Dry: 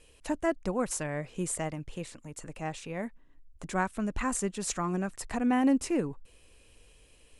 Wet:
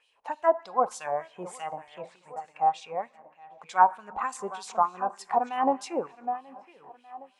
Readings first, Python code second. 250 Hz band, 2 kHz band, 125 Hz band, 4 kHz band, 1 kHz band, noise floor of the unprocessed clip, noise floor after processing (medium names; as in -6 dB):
-10.0 dB, -0.5 dB, under -15 dB, -1.5 dB, +11.5 dB, -60 dBFS, -65 dBFS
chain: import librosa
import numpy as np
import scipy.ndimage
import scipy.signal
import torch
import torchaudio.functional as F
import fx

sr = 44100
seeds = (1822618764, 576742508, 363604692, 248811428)

p1 = fx.peak_eq(x, sr, hz=850.0, db=14.5, octaves=1.0)
p2 = p1 + fx.echo_tape(p1, sr, ms=768, feedback_pct=44, wet_db=-10, lp_hz=2700.0, drive_db=11.0, wow_cents=38, dry=0)
p3 = fx.dynamic_eq(p2, sr, hz=2000.0, q=1.8, threshold_db=-44.0, ratio=4.0, max_db=-6)
p4 = fx.noise_reduce_blind(p3, sr, reduce_db=7)
p5 = fx.rev_plate(p4, sr, seeds[0], rt60_s=1.1, hf_ratio=0.85, predelay_ms=0, drr_db=15.0)
p6 = fx.filter_lfo_bandpass(p5, sr, shape='sine', hz=3.3, low_hz=700.0, high_hz=3900.0, q=1.9)
y = p6 * 10.0 ** (5.0 / 20.0)